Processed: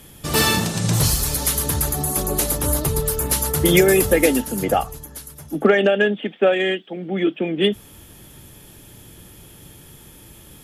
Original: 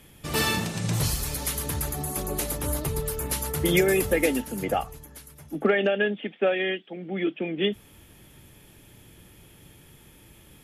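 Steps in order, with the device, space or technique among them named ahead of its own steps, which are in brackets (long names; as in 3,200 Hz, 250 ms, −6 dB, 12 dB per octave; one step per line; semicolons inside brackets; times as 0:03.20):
exciter from parts (in parallel at −6 dB: high-pass filter 2,100 Hz 24 dB per octave + soft clipping −28 dBFS, distortion −11 dB)
on the sum: level +7 dB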